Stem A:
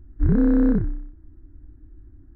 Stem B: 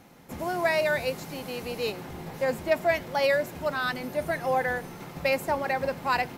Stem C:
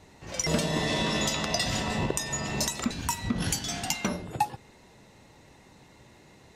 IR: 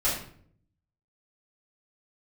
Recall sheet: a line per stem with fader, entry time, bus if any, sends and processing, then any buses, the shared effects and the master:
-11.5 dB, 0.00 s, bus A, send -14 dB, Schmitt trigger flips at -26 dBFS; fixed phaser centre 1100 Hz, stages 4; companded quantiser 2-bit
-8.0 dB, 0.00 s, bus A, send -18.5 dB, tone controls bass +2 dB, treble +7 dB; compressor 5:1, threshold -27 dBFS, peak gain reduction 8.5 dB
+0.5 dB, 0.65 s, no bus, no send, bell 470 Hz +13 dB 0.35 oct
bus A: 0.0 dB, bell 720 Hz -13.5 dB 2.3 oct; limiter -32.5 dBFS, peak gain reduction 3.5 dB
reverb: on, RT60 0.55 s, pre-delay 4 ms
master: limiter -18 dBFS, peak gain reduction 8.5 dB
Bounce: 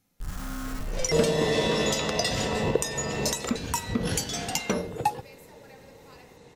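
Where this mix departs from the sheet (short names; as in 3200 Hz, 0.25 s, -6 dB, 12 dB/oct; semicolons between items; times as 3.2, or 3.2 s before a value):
stem B -8.0 dB -> -18.0 dB; master: missing limiter -18 dBFS, peak gain reduction 8.5 dB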